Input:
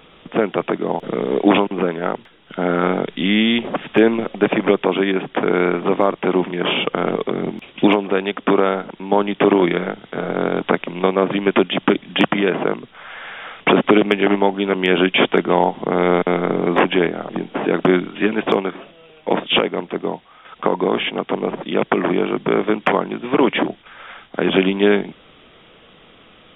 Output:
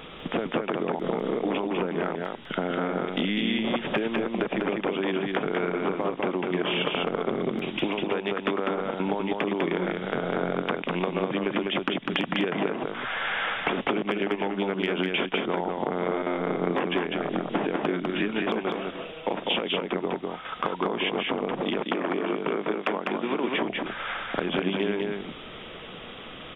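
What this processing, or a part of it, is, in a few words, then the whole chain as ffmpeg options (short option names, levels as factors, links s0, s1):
serial compression, peaks first: -filter_complex "[0:a]acompressor=threshold=0.0631:ratio=6,acompressor=threshold=0.0282:ratio=2.5,asettb=1/sr,asplit=3[s0][s1][s2];[s0]atrim=end=21.624[s3];[s1]atrim=start=21.62:end=23.55,asetpts=PTS-STARTPTS,afade=t=in:d=0.004:c=qsin,afade=t=out:st=1.926:d=0.004:c=qsin,highpass=200[s4];[s2]atrim=start=23.546[s5];[s3][s4]acrossfade=d=0.004:c1=hsin:c2=qsin[s6];[s6][s5]acrossfade=d=0.004:c1=qsin:c2=hsin,aecho=1:1:200:0.708,volume=1.68"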